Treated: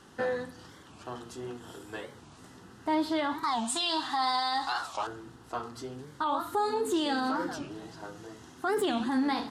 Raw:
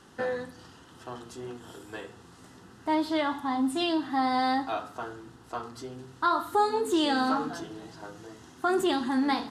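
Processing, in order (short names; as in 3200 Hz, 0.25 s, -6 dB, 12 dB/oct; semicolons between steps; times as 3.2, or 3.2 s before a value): 3.44–5.07 graphic EQ 125/250/500/1000/4000/8000 Hz -5/-8/-5/+9/+11/+11 dB; limiter -21 dBFS, peak gain reduction 11.5 dB; record warp 45 rpm, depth 250 cents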